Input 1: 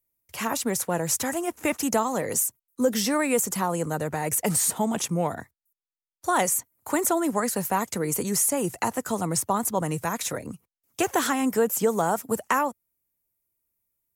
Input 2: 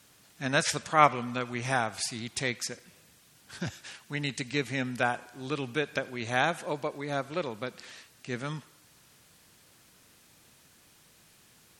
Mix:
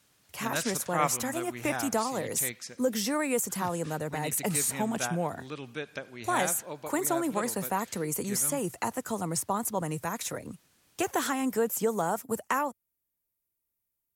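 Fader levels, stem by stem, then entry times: −5.0, −7.0 decibels; 0.00, 0.00 seconds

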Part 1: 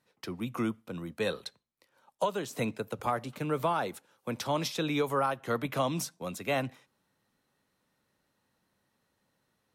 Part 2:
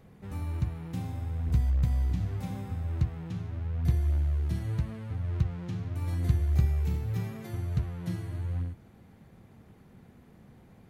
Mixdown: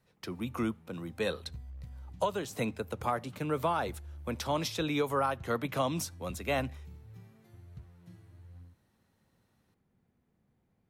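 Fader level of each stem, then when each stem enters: −1.0, −19.5 decibels; 0.00, 0.00 seconds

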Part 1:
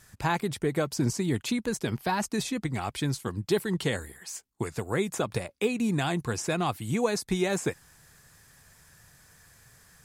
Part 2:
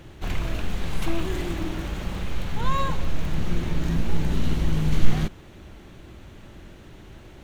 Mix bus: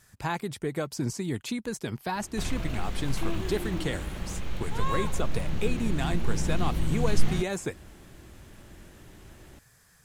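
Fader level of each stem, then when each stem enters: −3.5, −5.0 decibels; 0.00, 2.15 seconds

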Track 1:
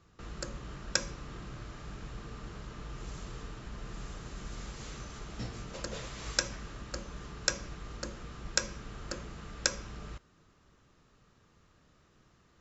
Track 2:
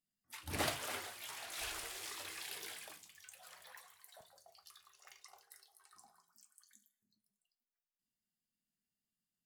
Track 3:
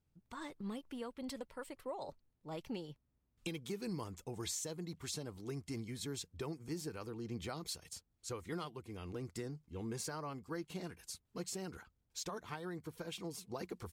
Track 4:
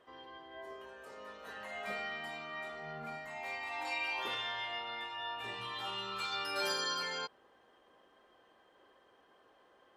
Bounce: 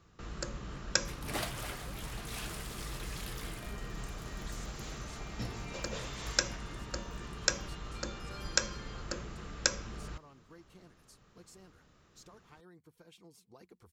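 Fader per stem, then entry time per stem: +0.5, −0.5, −13.5, −14.0 decibels; 0.00, 0.75, 0.00, 1.75 seconds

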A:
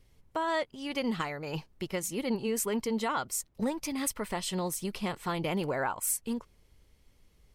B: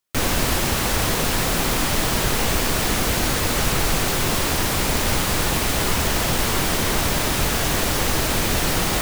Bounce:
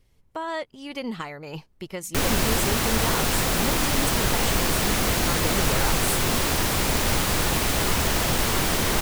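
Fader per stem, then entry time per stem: 0.0, −2.0 decibels; 0.00, 2.00 seconds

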